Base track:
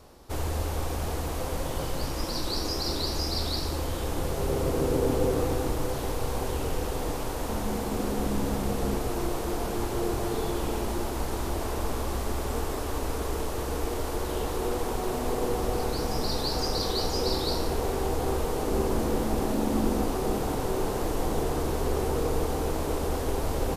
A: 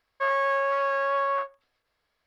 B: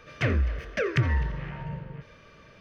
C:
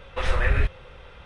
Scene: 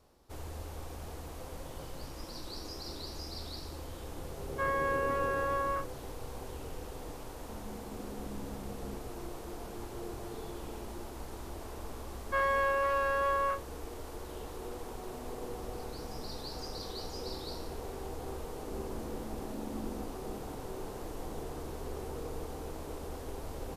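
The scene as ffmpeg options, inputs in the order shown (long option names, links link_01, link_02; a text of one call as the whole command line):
ffmpeg -i bed.wav -i cue0.wav -filter_complex "[1:a]asplit=2[link_01][link_02];[0:a]volume=-13dB[link_03];[link_01]acrossover=split=2800[link_04][link_05];[link_05]acompressor=threshold=-53dB:ratio=4:attack=1:release=60[link_06];[link_04][link_06]amix=inputs=2:normalize=0,atrim=end=2.26,asetpts=PTS-STARTPTS,volume=-7dB,afade=type=in:duration=0.004:curve=hsin,afade=type=out:start_time=2.256:duration=0.004:curve=hsin,adelay=4380[link_07];[link_02]atrim=end=2.26,asetpts=PTS-STARTPTS,volume=-4.5dB,afade=type=in:duration=0.004:curve=hsin,afade=type=out:start_time=2.256:duration=0.004:curve=hsin,adelay=12120[link_08];[link_03][link_07][link_08]amix=inputs=3:normalize=0" out.wav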